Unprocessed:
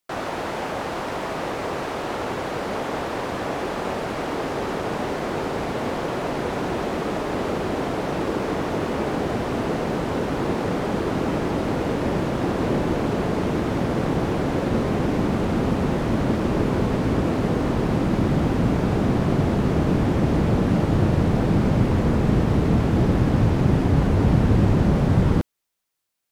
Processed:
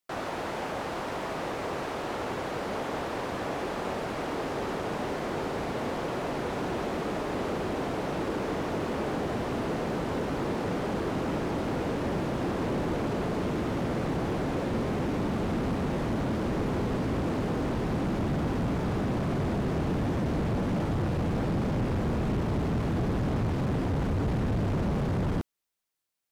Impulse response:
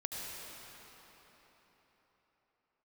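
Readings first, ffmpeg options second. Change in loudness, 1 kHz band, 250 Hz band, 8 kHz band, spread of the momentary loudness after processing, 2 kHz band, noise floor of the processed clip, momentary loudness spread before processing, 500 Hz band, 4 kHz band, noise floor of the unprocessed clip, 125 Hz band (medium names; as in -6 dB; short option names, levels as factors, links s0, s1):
-7.5 dB, -6.0 dB, -8.0 dB, -6.0 dB, 4 LU, -6.0 dB, -34 dBFS, 8 LU, -6.5 dB, -6.0 dB, -29 dBFS, -8.5 dB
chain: -af "asoftclip=type=hard:threshold=0.106,volume=0.531"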